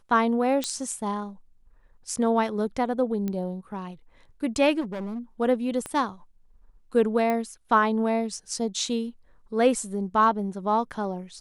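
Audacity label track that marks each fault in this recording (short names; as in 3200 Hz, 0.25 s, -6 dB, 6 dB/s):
0.640000	0.640000	pop -12 dBFS
3.280000	3.280000	pop -18 dBFS
4.800000	5.190000	clipped -29 dBFS
5.860000	5.860000	pop -19 dBFS
7.300000	7.300000	pop -15 dBFS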